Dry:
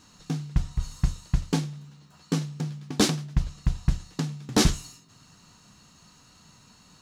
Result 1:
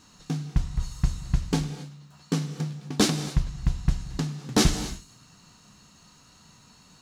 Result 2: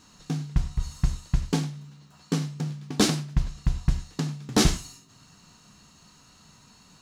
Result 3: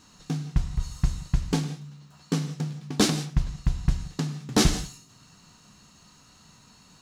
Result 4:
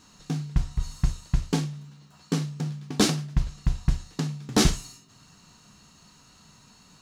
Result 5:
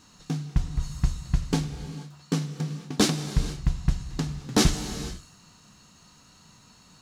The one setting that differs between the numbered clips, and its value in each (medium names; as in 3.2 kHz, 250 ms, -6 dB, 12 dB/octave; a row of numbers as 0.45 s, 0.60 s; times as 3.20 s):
gated-style reverb, gate: 300 ms, 120 ms, 200 ms, 80 ms, 510 ms